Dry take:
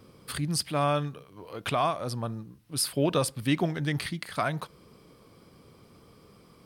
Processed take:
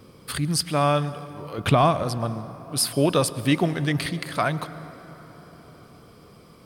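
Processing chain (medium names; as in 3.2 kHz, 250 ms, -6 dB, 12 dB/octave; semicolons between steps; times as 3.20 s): 1.58–2.03 s: bass shelf 360 Hz +11.5 dB; on a send: reverberation RT60 4.6 s, pre-delay 98 ms, DRR 14.5 dB; on the sum: trim +5 dB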